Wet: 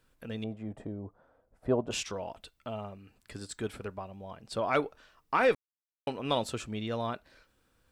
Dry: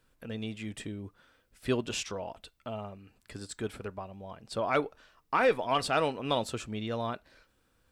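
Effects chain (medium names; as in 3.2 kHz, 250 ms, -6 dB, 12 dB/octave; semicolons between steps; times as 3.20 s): 0.44–1.91 s: FFT filter 370 Hz 0 dB, 680 Hz +10 dB, 2.8 kHz -21 dB; 5.55–6.07 s: mute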